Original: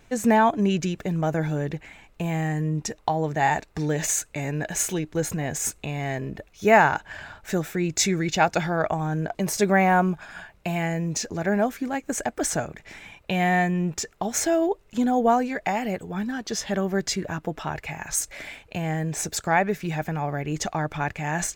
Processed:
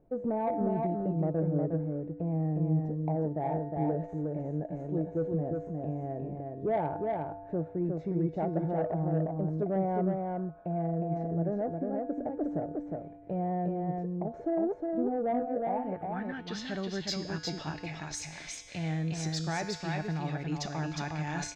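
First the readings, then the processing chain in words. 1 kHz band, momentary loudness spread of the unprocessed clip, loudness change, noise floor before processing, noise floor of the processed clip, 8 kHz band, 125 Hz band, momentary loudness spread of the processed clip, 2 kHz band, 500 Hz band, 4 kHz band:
−11.5 dB, 11 LU, −8.0 dB, −56 dBFS, −46 dBFS, below −15 dB, −4.0 dB, 7 LU, −16.5 dB, −6.0 dB, −8.5 dB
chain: low-pass filter sweep 570 Hz → 4,900 Hz, 0:15.60–0:16.74
in parallel at +2 dB: brickwall limiter −14.5 dBFS, peak gain reduction 10 dB
on the sum: tuned comb filter 98 Hz, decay 1.5 s, harmonics odd, mix 80%
soft clipping −17 dBFS, distortion −22 dB
thirty-one-band graphic EQ 160 Hz +8 dB, 315 Hz +6 dB, 4,000 Hz +4 dB
on a send: single-tap delay 360 ms −3.5 dB
on the sum: level −5.5 dB

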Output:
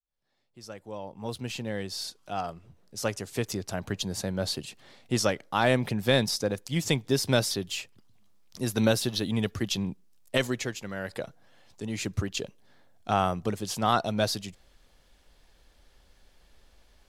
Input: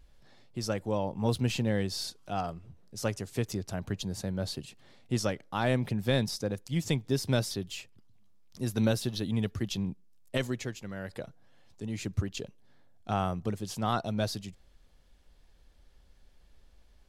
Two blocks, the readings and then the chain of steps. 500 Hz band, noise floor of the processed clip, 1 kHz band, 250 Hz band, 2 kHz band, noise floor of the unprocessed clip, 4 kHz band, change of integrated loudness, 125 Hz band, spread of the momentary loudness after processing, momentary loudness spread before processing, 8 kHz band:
+4.0 dB, −63 dBFS, +5.5 dB, +1.5 dB, +6.0 dB, −61 dBFS, +6.0 dB, +3.5 dB, −0.5 dB, 16 LU, 13 LU, +6.0 dB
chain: fade in at the beginning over 4.19 s
low-shelf EQ 270 Hz −8 dB
level +7 dB

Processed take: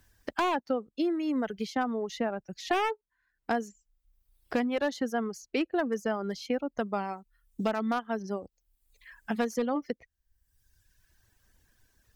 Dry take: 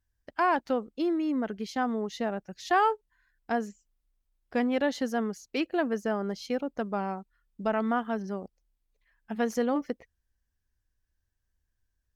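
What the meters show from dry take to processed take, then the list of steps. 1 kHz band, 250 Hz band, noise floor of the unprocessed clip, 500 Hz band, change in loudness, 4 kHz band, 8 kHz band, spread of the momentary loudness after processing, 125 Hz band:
−3.0 dB, −1.0 dB, −80 dBFS, −1.0 dB, −1.5 dB, +1.0 dB, +0.5 dB, 10 LU, can't be measured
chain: wavefolder on the positive side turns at −22 dBFS
reverb reduction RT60 1.1 s
multiband upward and downward compressor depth 70%

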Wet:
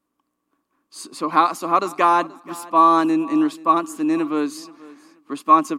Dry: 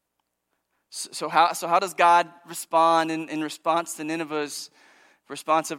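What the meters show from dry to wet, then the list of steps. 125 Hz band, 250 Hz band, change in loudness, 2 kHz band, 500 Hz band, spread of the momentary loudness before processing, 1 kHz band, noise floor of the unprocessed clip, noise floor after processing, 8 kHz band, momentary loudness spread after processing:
+2.0 dB, +11.0 dB, +4.5 dB, −1.5 dB, +0.5 dB, 17 LU, +4.0 dB, −80 dBFS, −77 dBFS, −3.5 dB, 19 LU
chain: hollow resonant body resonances 280/1,100 Hz, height 17 dB, ringing for 30 ms
on a send: repeating echo 480 ms, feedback 24%, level −21 dB
on the sum: level −3.5 dB

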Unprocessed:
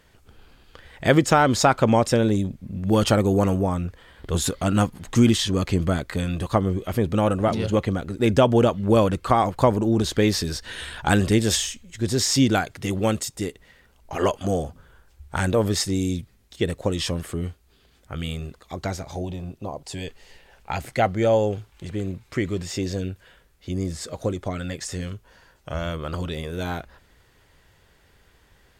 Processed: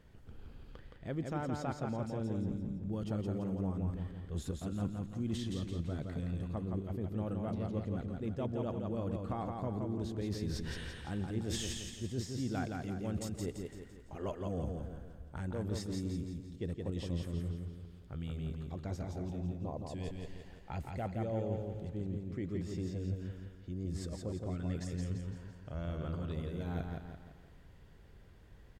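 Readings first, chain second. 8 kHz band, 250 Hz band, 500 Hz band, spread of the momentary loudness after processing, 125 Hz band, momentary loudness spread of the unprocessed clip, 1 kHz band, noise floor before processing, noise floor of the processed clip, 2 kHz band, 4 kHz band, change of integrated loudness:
−20.5 dB, −14.5 dB, −18.0 dB, 9 LU, −12.0 dB, 15 LU, −20.5 dB, −59 dBFS, −56 dBFS, −21.5 dB, −20.0 dB, −16.0 dB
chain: drawn EQ curve 200 Hz 0 dB, 930 Hz −9 dB, 8,900 Hz −15 dB
reversed playback
downward compressor 5 to 1, threshold −37 dBFS, peak gain reduction 21.5 dB
reversed playback
repeating echo 169 ms, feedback 46%, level −4 dB
feedback echo with a swinging delay time 130 ms, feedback 68%, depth 91 cents, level −22 dB

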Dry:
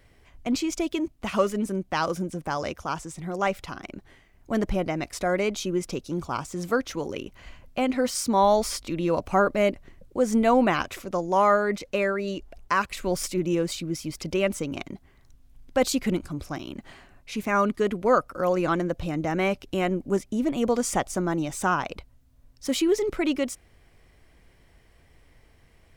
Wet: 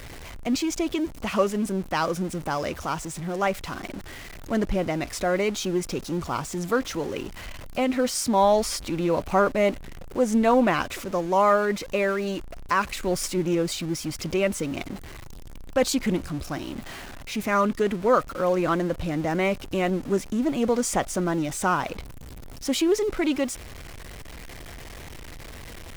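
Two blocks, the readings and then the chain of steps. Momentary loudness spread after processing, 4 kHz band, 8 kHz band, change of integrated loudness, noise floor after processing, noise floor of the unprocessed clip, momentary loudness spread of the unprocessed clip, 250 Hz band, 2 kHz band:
20 LU, +2.0 dB, +2.0 dB, +1.0 dB, −40 dBFS, −58 dBFS, 14 LU, +1.0 dB, +1.0 dB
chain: converter with a step at zero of −35 dBFS
highs frequency-modulated by the lows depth 0.15 ms

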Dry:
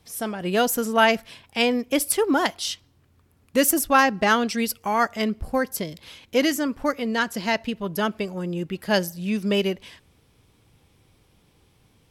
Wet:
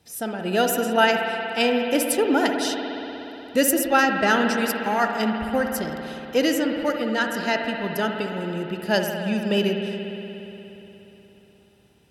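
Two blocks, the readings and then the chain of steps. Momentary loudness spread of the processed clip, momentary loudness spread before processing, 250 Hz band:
13 LU, 11 LU, +1.0 dB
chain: notch comb filter 1,100 Hz
spring reverb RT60 3.6 s, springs 59 ms, chirp 25 ms, DRR 3 dB

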